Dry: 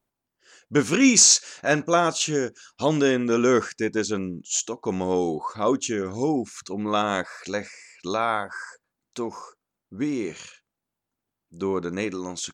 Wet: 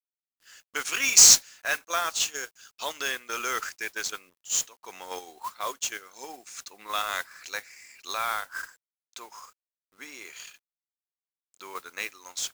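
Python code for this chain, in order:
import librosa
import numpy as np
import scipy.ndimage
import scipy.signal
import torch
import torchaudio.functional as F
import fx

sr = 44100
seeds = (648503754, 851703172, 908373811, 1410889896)

p1 = scipy.signal.sosfilt(scipy.signal.butter(2, 1300.0, 'highpass', fs=sr, output='sos'), x)
p2 = fx.level_steps(p1, sr, step_db=19)
p3 = p1 + (p2 * 10.0 ** (-0.5 / 20.0))
p4 = fx.transient(p3, sr, attack_db=0, sustain_db=-8)
p5 = fx.mod_noise(p4, sr, seeds[0], snr_db=12)
p6 = fx.quant_dither(p5, sr, seeds[1], bits=10, dither='none')
y = p6 * 10.0 ** (-2.5 / 20.0)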